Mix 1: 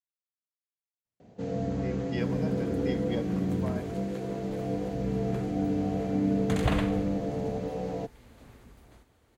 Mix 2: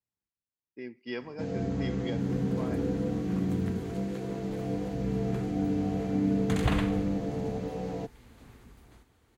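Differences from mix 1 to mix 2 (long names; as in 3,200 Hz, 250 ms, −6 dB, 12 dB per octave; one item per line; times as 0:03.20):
speech: entry −1.05 s
master: add parametric band 590 Hz −6 dB 0.48 octaves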